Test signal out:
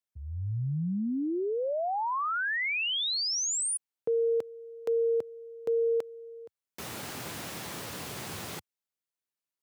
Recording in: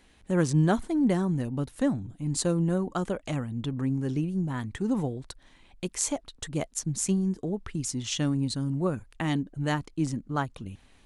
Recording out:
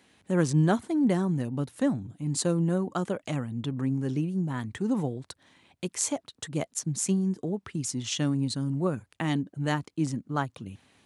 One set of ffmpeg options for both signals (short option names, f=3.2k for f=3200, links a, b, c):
-af "highpass=f=94:w=0.5412,highpass=f=94:w=1.3066"